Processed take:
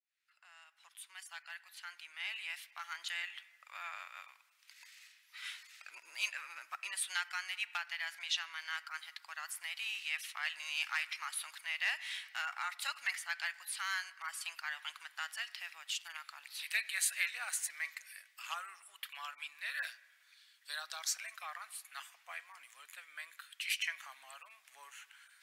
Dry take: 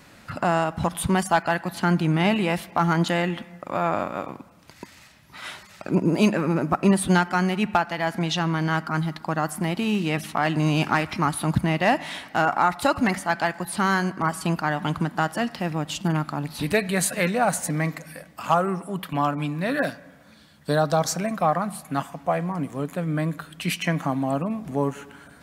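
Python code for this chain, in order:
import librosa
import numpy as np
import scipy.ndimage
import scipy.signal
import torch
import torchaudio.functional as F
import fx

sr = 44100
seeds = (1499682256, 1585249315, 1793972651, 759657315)

y = fx.fade_in_head(x, sr, length_s=4.29)
y = fx.ladder_highpass(y, sr, hz=1600.0, resonance_pct=25)
y = F.gain(torch.from_numpy(y), -2.0).numpy()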